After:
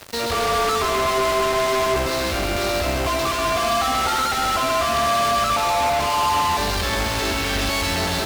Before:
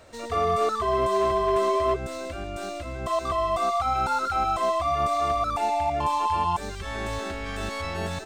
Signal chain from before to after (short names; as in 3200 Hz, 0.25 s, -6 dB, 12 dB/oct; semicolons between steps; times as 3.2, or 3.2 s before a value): resonant high shelf 6800 Hz -13.5 dB, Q 3; requantised 10-bit, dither triangular; fuzz box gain 47 dB, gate -45 dBFS; on a send: split-band echo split 320 Hz, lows 0.245 s, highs 0.133 s, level -5.5 dB; on the sum: gain -8.5 dB